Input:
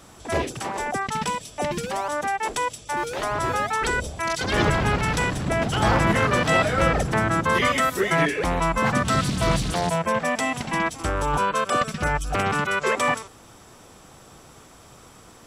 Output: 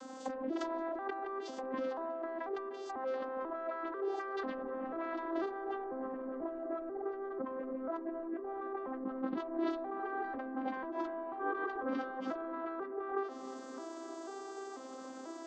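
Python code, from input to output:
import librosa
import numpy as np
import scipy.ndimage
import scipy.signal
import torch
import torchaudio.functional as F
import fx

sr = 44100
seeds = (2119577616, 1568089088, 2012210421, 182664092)

y = fx.vocoder_arp(x, sr, chord='major triad', root=60, every_ms=492)
y = fx.highpass(y, sr, hz=350.0, slope=6)
y = fx.env_lowpass_down(y, sr, base_hz=570.0, full_db=-19.5)
y = fx.doubler(y, sr, ms=14.0, db=-2, at=(9.98, 12.27))
y = 10.0 ** (-22.5 / 20.0) * np.tanh(y / 10.0 ** (-22.5 / 20.0))
y = fx.env_lowpass_down(y, sr, base_hz=2200.0, full_db=-27.0)
y = fx.over_compress(y, sr, threshold_db=-38.0, ratio=-1.0)
y = fx.peak_eq(y, sr, hz=2500.0, db=-9.5, octaves=0.77)
y = fx.echo_bbd(y, sr, ms=306, stages=4096, feedback_pct=72, wet_db=-16)
y = fx.end_taper(y, sr, db_per_s=110.0)
y = y * 10.0 ** (-1.0 / 20.0)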